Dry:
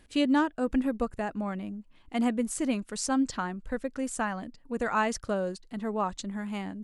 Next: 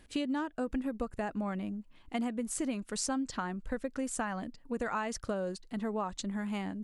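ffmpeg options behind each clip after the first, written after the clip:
ffmpeg -i in.wav -af "acompressor=threshold=-30dB:ratio=10" out.wav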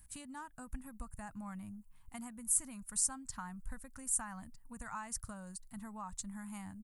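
ffmpeg -i in.wav -af "firequalizer=gain_entry='entry(110,0);entry(380,-29);entry(910,-7);entry(3200,-16);entry(9200,10)':delay=0.05:min_phase=1" out.wav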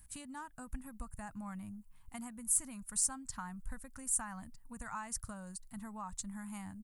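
ffmpeg -i in.wav -af "asoftclip=type=tanh:threshold=-18.5dB,volume=1dB" out.wav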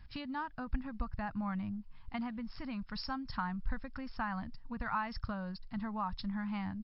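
ffmpeg -i in.wav -af "volume=8dB" -ar 12000 -c:a libmp3lame -b:a 48k out.mp3

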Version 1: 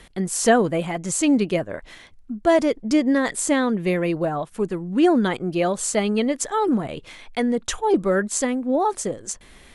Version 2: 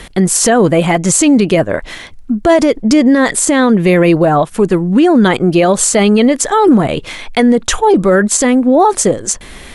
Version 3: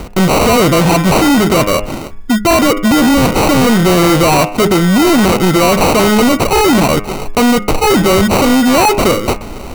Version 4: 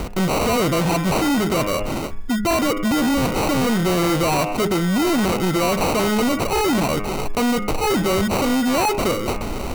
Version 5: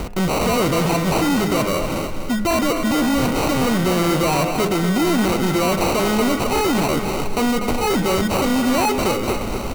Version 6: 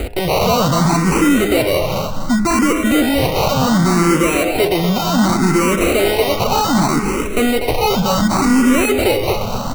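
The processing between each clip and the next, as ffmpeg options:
ffmpeg -i in.wav -af "alimiter=level_in=16.5dB:limit=-1dB:release=50:level=0:latency=1,volume=-1dB" out.wav
ffmpeg -i in.wav -af "acrusher=samples=26:mix=1:aa=0.000001,bandreject=frequency=102.8:width_type=h:width=4,bandreject=frequency=205.6:width_type=h:width=4,bandreject=frequency=308.4:width_type=h:width=4,bandreject=frequency=411.2:width_type=h:width=4,bandreject=frequency=514:width_type=h:width=4,bandreject=frequency=616.8:width_type=h:width=4,bandreject=frequency=719.6:width_type=h:width=4,bandreject=frequency=822.4:width_type=h:width=4,bandreject=frequency=925.2:width_type=h:width=4,bandreject=frequency=1028:width_type=h:width=4,bandreject=frequency=1130.8:width_type=h:width=4,bandreject=frequency=1233.6:width_type=h:width=4,bandreject=frequency=1336.4:width_type=h:width=4,bandreject=frequency=1439.2:width_type=h:width=4,bandreject=frequency=1542:width_type=h:width=4,bandreject=frequency=1644.8:width_type=h:width=4,bandreject=frequency=1747.6:width_type=h:width=4,bandreject=frequency=1850.4:width_type=h:width=4,bandreject=frequency=1953.2:width_type=h:width=4,bandreject=frequency=2056:width_type=h:width=4,bandreject=frequency=2158.8:width_type=h:width=4,bandreject=frequency=2261.6:width_type=h:width=4,bandreject=frequency=2364.4:width_type=h:width=4,bandreject=frequency=2467.2:width_type=h:width=4,bandreject=frequency=2570:width_type=h:width=4,bandreject=frequency=2672.8:width_type=h:width=4,bandreject=frequency=2775.6:width_type=h:width=4,bandreject=frequency=2878.4:width_type=h:width=4,volume=14.5dB,asoftclip=hard,volume=-14.5dB,volume=7dB" out.wav
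ffmpeg -i in.wav -af "alimiter=limit=-17dB:level=0:latency=1:release=16" out.wav
ffmpeg -i in.wav -af "aecho=1:1:244|488|732|976|1220:0.398|0.167|0.0702|0.0295|0.0124" out.wav
ffmpeg -i in.wav -filter_complex "[0:a]asplit=2[link_01][link_02];[link_02]afreqshift=0.67[link_03];[link_01][link_03]amix=inputs=2:normalize=1,volume=7dB" out.wav

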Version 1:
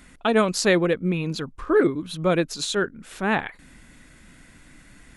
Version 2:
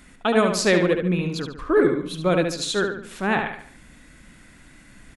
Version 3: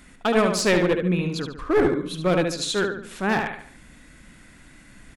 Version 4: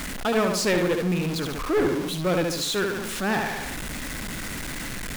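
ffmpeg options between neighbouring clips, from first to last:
ffmpeg -i in.wav -filter_complex "[0:a]asplit=2[link_01][link_02];[link_02]adelay=72,lowpass=frequency=5000:poles=1,volume=-5.5dB,asplit=2[link_03][link_04];[link_04]adelay=72,lowpass=frequency=5000:poles=1,volume=0.42,asplit=2[link_05][link_06];[link_06]adelay=72,lowpass=frequency=5000:poles=1,volume=0.42,asplit=2[link_07][link_08];[link_08]adelay=72,lowpass=frequency=5000:poles=1,volume=0.42,asplit=2[link_09][link_10];[link_10]adelay=72,lowpass=frequency=5000:poles=1,volume=0.42[link_11];[link_01][link_03][link_05][link_07][link_09][link_11]amix=inputs=6:normalize=0" out.wav
ffmpeg -i in.wav -af "aeval=exprs='clip(val(0),-1,0.126)':channel_layout=same" out.wav
ffmpeg -i in.wav -af "aeval=exprs='val(0)+0.5*0.0794*sgn(val(0))':channel_layout=same,volume=-5dB" out.wav

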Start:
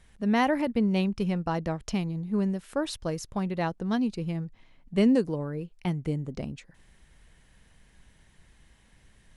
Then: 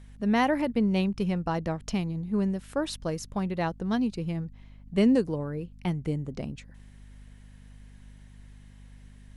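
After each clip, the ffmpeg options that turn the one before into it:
ffmpeg -i in.wav -af "aeval=exprs='val(0)+0.00398*(sin(2*PI*50*n/s)+sin(2*PI*2*50*n/s)/2+sin(2*PI*3*50*n/s)/3+sin(2*PI*4*50*n/s)/4+sin(2*PI*5*50*n/s)/5)':channel_layout=same" out.wav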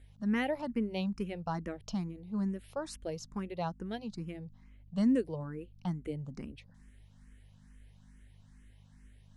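ffmpeg -i in.wav -filter_complex "[0:a]asplit=2[link_01][link_02];[link_02]afreqshift=2.3[link_03];[link_01][link_03]amix=inputs=2:normalize=1,volume=-5dB" out.wav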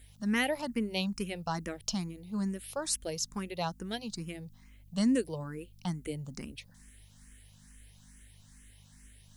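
ffmpeg -i in.wav -af "crystalizer=i=5.5:c=0" out.wav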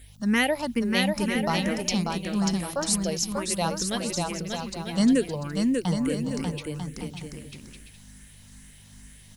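ffmpeg -i in.wav -af "aecho=1:1:590|944|1156|1284|1360:0.631|0.398|0.251|0.158|0.1,volume=6.5dB" out.wav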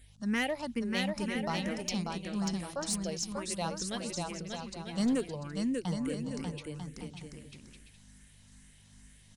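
ffmpeg -i in.wav -af "aresample=22050,aresample=44100,aeval=exprs='clip(val(0),-1,0.126)':channel_layout=same,volume=-8dB" out.wav

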